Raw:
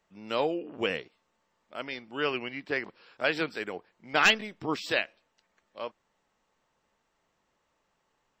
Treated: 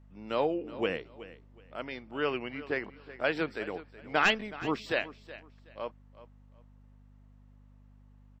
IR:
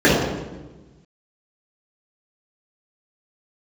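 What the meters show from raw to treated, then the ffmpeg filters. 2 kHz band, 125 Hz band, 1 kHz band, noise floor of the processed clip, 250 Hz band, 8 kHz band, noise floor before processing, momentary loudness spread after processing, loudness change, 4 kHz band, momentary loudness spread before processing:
-3.5 dB, +1.0 dB, -1.0 dB, -57 dBFS, 0.0 dB, -9.0 dB, -76 dBFS, 21 LU, -3.0 dB, -6.0 dB, 18 LU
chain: -af "highshelf=f=2800:g=-10.5,aeval=exprs='val(0)+0.00178*(sin(2*PI*50*n/s)+sin(2*PI*2*50*n/s)/2+sin(2*PI*3*50*n/s)/3+sin(2*PI*4*50*n/s)/4+sin(2*PI*5*50*n/s)/5)':c=same,aecho=1:1:372|744:0.15|0.0374"

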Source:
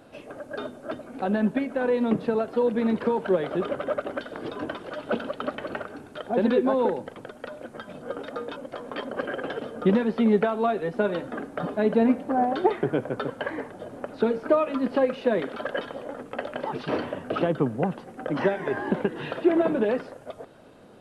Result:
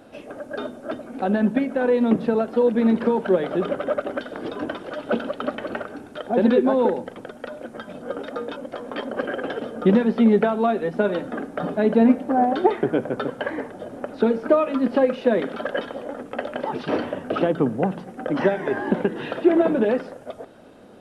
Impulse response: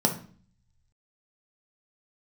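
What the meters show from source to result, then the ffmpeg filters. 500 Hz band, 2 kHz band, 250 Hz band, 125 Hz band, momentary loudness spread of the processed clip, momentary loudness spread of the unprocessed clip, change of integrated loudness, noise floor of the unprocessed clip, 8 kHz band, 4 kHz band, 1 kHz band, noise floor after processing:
+3.5 dB, +2.5 dB, +5.0 dB, +2.5 dB, 16 LU, 15 LU, +4.0 dB, -47 dBFS, no reading, +2.5 dB, +3.0 dB, -43 dBFS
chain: -filter_complex "[0:a]asplit=2[s0][s1];[1:a]atrim=start_sample=2205[s2];[s1][s2]afir=irnorm=-1:irlink=0,volume=0.0447[s3];[s0][s3]amix=inputs=2:normalize=0,volume=1.26"

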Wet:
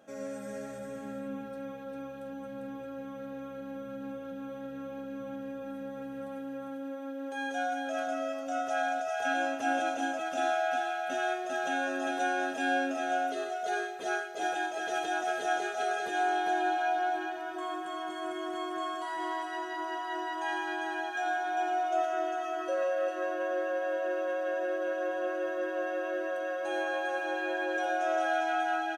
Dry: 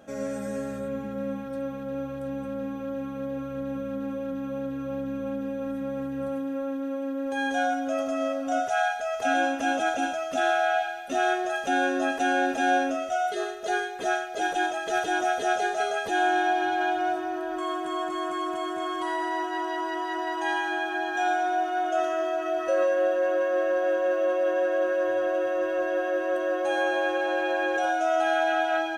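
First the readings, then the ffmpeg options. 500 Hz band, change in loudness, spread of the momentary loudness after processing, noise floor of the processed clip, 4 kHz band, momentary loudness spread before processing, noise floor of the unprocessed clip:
-7.0 dB, -6.0 dB, 11 LU, -41 dBFS, -5.5 dB, 9 LU, -34 dBFS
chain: -filter_complex "[0:a]highpass=f=220:p=1,asplit=2[s0][s1];[s1]aecho=0:1:40|399:0.133|0.631[s2];[s0][s2]amix=inputs=2:normalize=0,volume=0.473"

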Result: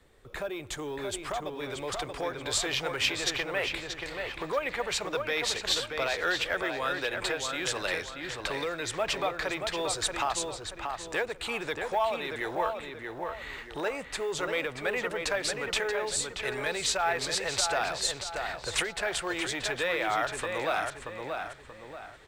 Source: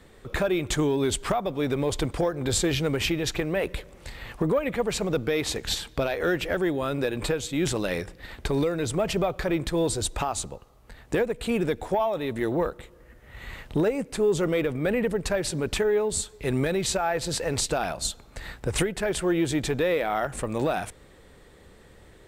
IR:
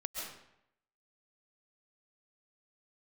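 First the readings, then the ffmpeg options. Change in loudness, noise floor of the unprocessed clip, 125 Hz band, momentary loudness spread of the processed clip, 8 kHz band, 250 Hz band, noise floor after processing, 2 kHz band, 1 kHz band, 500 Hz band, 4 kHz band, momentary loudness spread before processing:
-4.0 dB, -52 dBFS, -14.5 dB, 9 LU, -2.0 dB, -13.0 dB, -46 dBFS, +2.5 dB, 0.0 dB, -7.0 dB, +1.5 dB, 7 LU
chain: -filter_complex "[0:a]equalizer=f=200:w=1.6:g=-5.5,asplit=2[s0][s1];[s1]adelay=631,lowpass=f=3500:p=1,volume=0.562,asplit=2[s2][s3];[s3]adelay=631,lowpass=f=3500:p=1,volume=0.38,asplit=2[s4][s5];[s5]adelay=631,lowpass=f=3500:p=1,volume=0.38,asplit=2[s6][s7];[s7]adelay=631,lowpass=f=3500:p=1,volume=0.38,asplit=2[s8][s9];[s9]adelay=631,lowpass=f=3500:p=1,volume=0.38[s10];[s0][s2][s4][s6][s8][s10]amix=inputs=6:normalize=0,acrossover=split=390|760|7600[s11][s12][s13][s14];[s11]asoftclip=type=tanh:threshold=0.0211[s15];[s13]dynaudnorm=f=600:g=7:m=3.35[s16];[s15][s12][s16][s14]amix=inputs=4:normalize=0,acrusher=bits=9:mode=log:mix=0:aa=0.000001,volume=0.376"

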